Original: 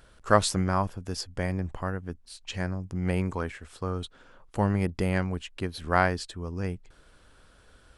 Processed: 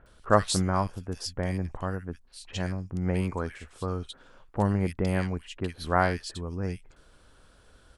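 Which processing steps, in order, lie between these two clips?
bands offset in time lows, highs 60 ms, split 2 kHz

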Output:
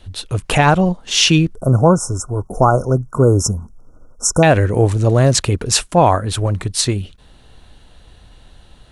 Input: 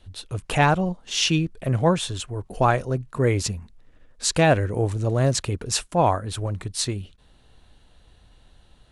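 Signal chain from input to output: 1.55–4.43 s: brick-wall FIR band-stop 1.5–5.2 kHz; loudness maximiser +10.5 dB; trim -1 dB

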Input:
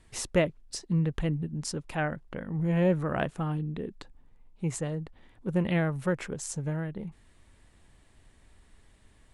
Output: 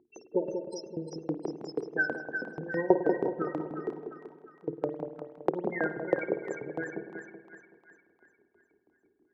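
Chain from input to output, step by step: de-esser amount 90%; resonant low shelf 520 Hz +10.5 dB, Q 3; de-hum 55.23 Hz, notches 23; saturation -4 dBFS, distortion -23 dB; loudest bins only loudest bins 16; LFO high-pass saw up 6.2 Hz 750–3500 Hz; on a send: two-band feedback delay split 1 kHz, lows 189 ms, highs 354 ms, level -6.5 dB; on the sum: spring tank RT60 1 s, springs 51 ms, chirp 45 ms, DRR 9.5 dB; trim +7.5 dB

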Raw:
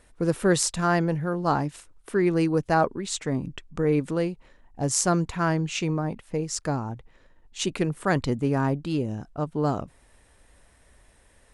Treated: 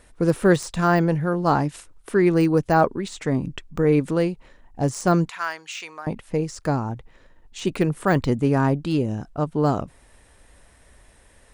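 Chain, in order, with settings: de-esser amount 90%; 5.29–6.07 s: high-pass 1.3 kHz 12 dB/octave; trim +4.5 dB

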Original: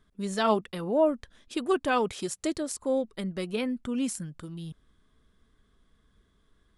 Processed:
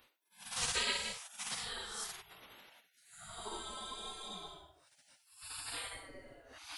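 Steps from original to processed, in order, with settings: Paulstretch 6.7×, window 0.10 s, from 2.36 s; spectral gate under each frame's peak -30 dB weak; trim +9 dB

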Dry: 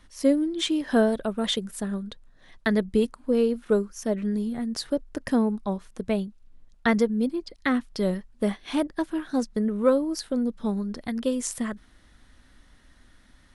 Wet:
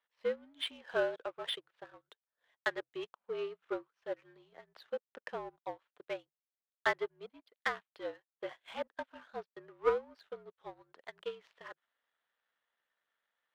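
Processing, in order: mistuned SSB -57 Hz 540–3600 Hz; power-law waveshaper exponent 1.4; trim -2 dB

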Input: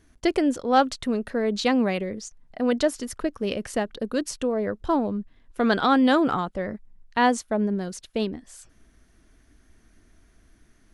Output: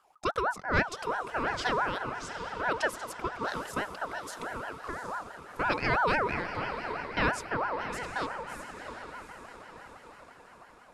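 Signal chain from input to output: 4.07–5.08 s: compression, threshold -28 dBFS, peak gain reduction 9.5 dB; echo that smears into a reverb 756 ms, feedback 53%, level -9 dB; ring modulator with a swept carrier 960 Hz, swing 30%, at 6 Hz; trim -5 dB

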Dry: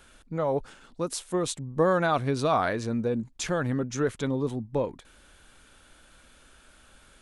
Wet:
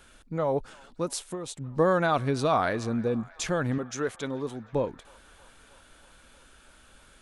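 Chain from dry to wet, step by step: 1.20–1.61 s: compression 6:1, threshold -33 dBFS, peak gain reduction 10 dB; 3.78–4.73 s: bass shelf 280 Hz -10.5 dB; feedback echo behind a band-pass 316 ms, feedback 76%, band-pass 1.6 kHz, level -21.5 dB

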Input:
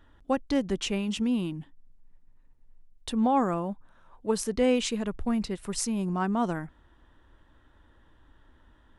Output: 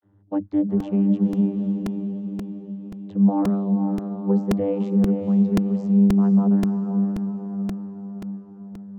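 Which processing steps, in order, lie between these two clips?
tilt EQ -4 dB/octave; vibrato 0.32 Hz 41 cents; vocoder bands 32, saw 99.3 Hz; echo that smears into a reverb 497 ms, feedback 55%, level -6 dB; crackling interface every 0.53 s, samples 128, repeat, from 0.80 s

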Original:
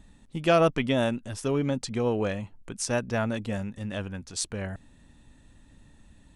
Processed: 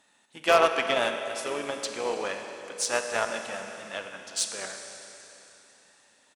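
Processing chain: harmony voices -7 st -15 dB, -4 st -10 dB; high-pass 660 Hz 12 dB/octave; Schroeder reverb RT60 3.4 s, combs from 31 ms, DRR 4 dB; Chebyshev shaper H 5 -19 dB, 7 -19 dB, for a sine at -10 dBFS; trim +3 dB

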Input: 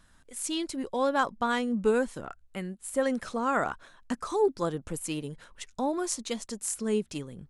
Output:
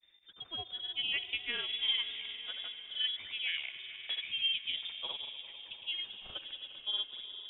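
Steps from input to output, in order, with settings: echo with a slow build-up 80 ms, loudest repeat 5, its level -18 dB; granulator, pitch spread up and down by 0 st; frequency inversion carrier 3.6 kHz; trim -7 dB

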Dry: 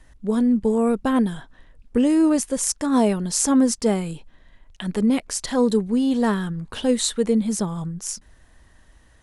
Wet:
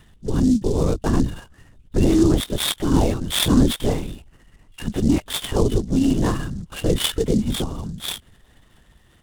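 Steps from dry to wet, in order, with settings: knee-point frequency compression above 2.7 kHz 4:1; peaking EQ 280 Hz +4 dB 0.68 oct; LPC vocoder at 8 kHz whisper; delay time shaken by noise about 5.7 kHz, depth 0.035 ms; trim -1.5 dB

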